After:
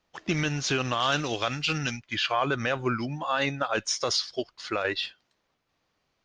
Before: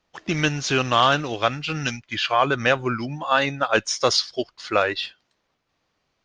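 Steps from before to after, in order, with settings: 4.21–4.85 s: compression 6:1, threshold -22 dBFS, peak gain reduction 8 dB; peak limiter -13 dBFS, peak gain reduction 9 dB; 1.00–1.78 s: treble shelf 3.5 kHz +10 dB; trim -2.5 dB

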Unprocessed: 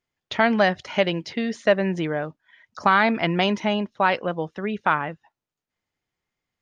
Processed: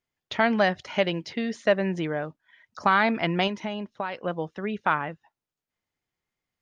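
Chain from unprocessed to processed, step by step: 3.47–4.24 s: compression 4:1, threshold -26 dBFS, peak gain reduction 10.5 dB; trim -3 dB

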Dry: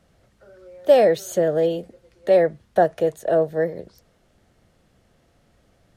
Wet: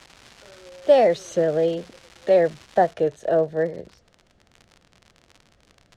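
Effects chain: crackle 540 per s -31 dBFS, from 2.92 s 62 per s; low-pass 6.2 kHz 12 dB/octave; warped record 33 1/3 rpm, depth 100 cents; trim -1 dB

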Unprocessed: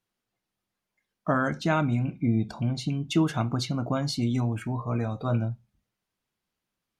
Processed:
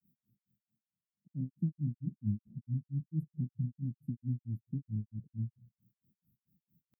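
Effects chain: inverse Chebyshev band-stop 910–5600 Hz, stop band 80 dB; in parallel at -1 dB: peak limiter -28.5 dBFS, peak gain reduction 9.5 dB; on the sum: high-pass 170 Hz 12 dB/octave; reverse; upward compressor, threshold -51 dBFS; reverse; granulator 172 ms, grains 4.5 per s, pitch spread up and down by 0 st; warped record 45 rpm, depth 160 cents

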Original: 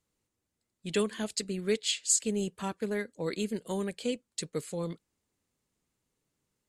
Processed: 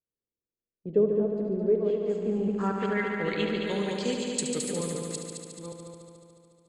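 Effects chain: chunks repeated in reverse 477 ms, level -6 dB; gate -46 dBFS, range -19 dB; low-pass sweep 490 Hz -> 9.4 kHz, 1.61–4.49 s; multi-head delay 72 ms, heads all three, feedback 66%, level -9 dB; on a send at -17 dB: reverberation RT60 1.0 s, pre-delay 25 ms

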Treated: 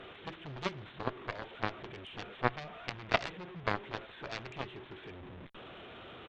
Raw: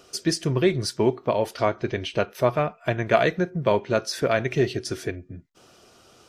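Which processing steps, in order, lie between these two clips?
one-bit delta coder 32 kbps, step -24.5 dBFS; resampled via 8 kHz; Chebyshev shaper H 3 -8 dB, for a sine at -6 dBFS; trim -3 dB

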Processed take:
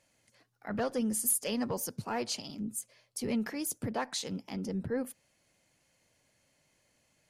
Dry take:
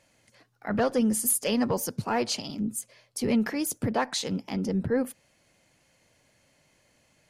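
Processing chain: peaking EQ 11 kHz +4 dB 1.9 oct; trim -7.5 dB

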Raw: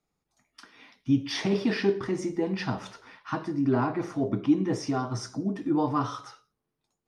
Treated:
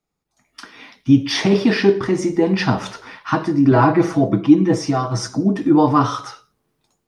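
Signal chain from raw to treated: 3.71–5.28 s: comb 6.1 ms, depth 73%; level rider gain up to 14 dB

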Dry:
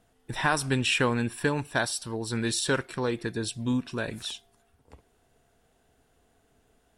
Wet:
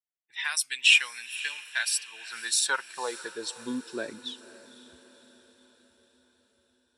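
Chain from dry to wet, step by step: expander on every frequency bin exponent 1.5; level-controlled noise filter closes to 1.2 kHz, open at -27.5 dBFS; treble shelf 4.5 kHz +9 dB; high-pass sweep 2.5 kHz -> 89 Hz, 1.57–5.57 s; on a send: echo that smears into a reverb 524 ms, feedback 54%, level -16 dB

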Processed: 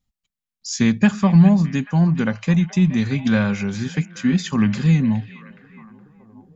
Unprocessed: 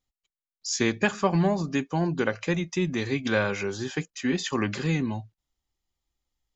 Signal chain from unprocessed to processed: resonant low shelf 270 Hz +7 dB, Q 3; repeats whose band climbs or falls 418 ms, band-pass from 2.5 kHz, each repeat -0.7 oct, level -11.5 dB; trim +1.5 dB

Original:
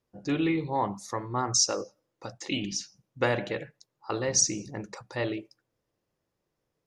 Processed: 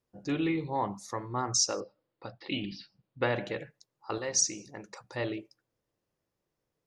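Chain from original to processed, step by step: 1.80–3.36 s: steep low-pass 4.7 kHz 72 dB/octave; 4.18–5.04 s: bass shelf 280 Hz -11 dB; trim -3 dB

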